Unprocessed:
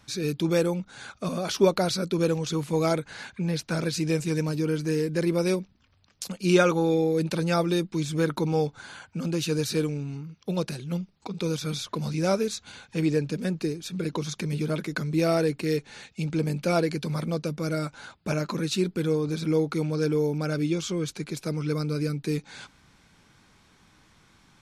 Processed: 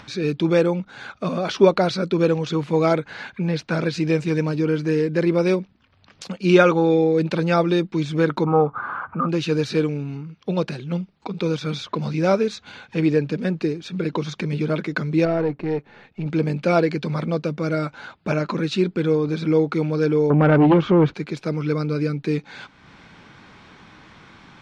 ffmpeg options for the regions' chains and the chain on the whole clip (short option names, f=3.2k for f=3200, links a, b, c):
-filter_complex "[0:a]asettb=1/sr,asplit=3[a][b][c];[a]atrim=end=8.444[d];[b]atrim=start=8.44:end=9.29,asetpts=PTS-STARTPTS,afade=t=in:d=0.004:c=qsin,afade=t=out:st=0.846:d=0.004:c=qsin,bandreject=f=60:t=h:w=6,bandreject=f=120:t=h:w=6,bandreject=f=180:t=h:w=6,acompressor=mode=upward:threshold=-35dB:ratio=2.5:attack=3.2:release=140:knee=2.83:detection=peak,lowpass=f=1.2k:t=q:w=13[e];[c]atrim=start=9.286[f];[d][e]acrossfade=d=0.004:c1=hsin:c2=qsin[g];[g][f]acrossfade=d=0.004:c1=qsin:c2=hsin,asettb=1/sr,asplit=3[h][i][j];[h]atrim=end=15.254[k];[i]atrim=start=15.25:end=16.26,asetpts=PTS-STARTPTS,afade=t=in:d=0.004:c=qsin,afade=t=out:st=1.006:d=0.004:c=qsin,aeval=exprs='if(lt(val(0),0),0.447*val(0),val(0))':c=same,lowpass=f=1.1k:p=1[l];[j]atrim=start=16.256[m];[k][l]acrossfade=d=0.004:c1=hsin:c2=qsin[n];[n][m]acrossfade=d=0.004:c1=qsin:c2=hsin,asettb=1/sr,asplit=3[o][p][q];[o]atrim=end=20.304[r];[p]atrim=start=20.3:end=21.14,asetpts=PTS-STARTPTS,afade=t=in:d=0.004:c=qsin,afade=t=out:st=0.836:d=0.004:c=qsin,lowpass=1.6k,aeval=exprs='0.158*sin(PI/2*2.24*val(0)/0.158)':c=same[s];[q]atrim=start=21.136[t];[r][s]acrossfade=d=0.004:c1=hsin:c2=qsin[u];[u][t]acrossfade=d=0.004:c1=qsin:c2=hsin,lowpass=3.3k,lowshelf=f=79:g=-11.5,acompressor=mode=upward:threshold=-44dB:ratio=2.5,volume=6.5dB"